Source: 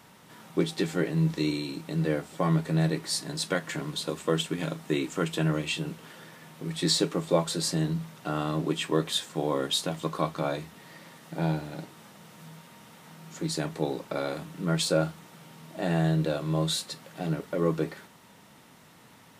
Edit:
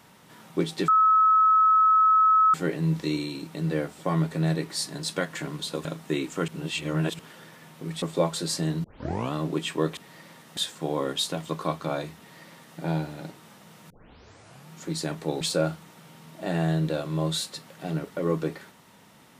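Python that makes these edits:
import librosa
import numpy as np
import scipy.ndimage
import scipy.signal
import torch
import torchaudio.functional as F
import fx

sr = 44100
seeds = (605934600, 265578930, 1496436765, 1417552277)

y = fx.edit(x, sr, fx.insert_tone(at_s=0.88, length_s=1.66, hz=1290.0, db=-15.5),
    fx.cut(start_s=4.19, length_s=0.46),
    fx.reverse_span(start_s=5.28, length_s=0.71),
    fx.cut(start_s=6.82, length_s=0.34),
    fx.tape_start(start_s=7.98, length_s=0.49),
    fx.duplicate(start_s=10.73, length_s=0.6, to_s=9.11),
    fx.tape_start(start_s=12.44, length_s=0.81),
    fx.cut(start_s=13.95, length_s=0.82), tone=tone)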